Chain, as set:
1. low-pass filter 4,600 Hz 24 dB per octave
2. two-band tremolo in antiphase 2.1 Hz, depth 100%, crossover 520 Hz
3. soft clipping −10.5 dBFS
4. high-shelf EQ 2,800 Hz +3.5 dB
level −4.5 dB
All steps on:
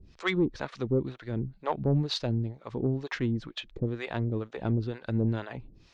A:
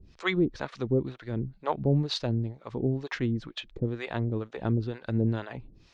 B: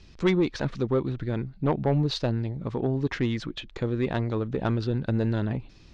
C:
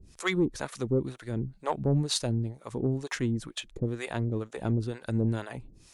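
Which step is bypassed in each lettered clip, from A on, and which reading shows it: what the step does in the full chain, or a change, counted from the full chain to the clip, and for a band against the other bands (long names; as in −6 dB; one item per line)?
3, distortion level −22 dB
2, change in integrated loudness +3.5 LU
1, change in crest factor +2.5 dB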